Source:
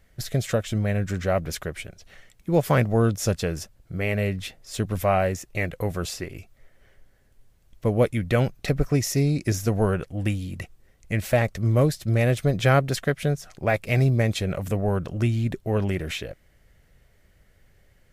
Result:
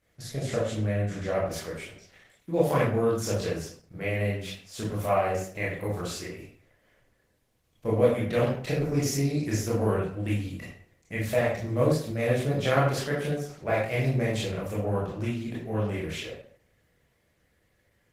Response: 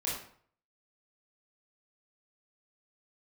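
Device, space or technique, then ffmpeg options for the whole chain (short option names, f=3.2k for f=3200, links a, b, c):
far-field microphone of a smart speaker: -filter_complex "[1:a]atrim=start_sample=2205[a];[0:a][a]afir=irnorm=-1:irlink=0,highpass=f=150:p=1,dynaudnorm=f=630:g=11:m=4dB,volume=-7dB" -ar 48000 -c:a libopus -b:a 16k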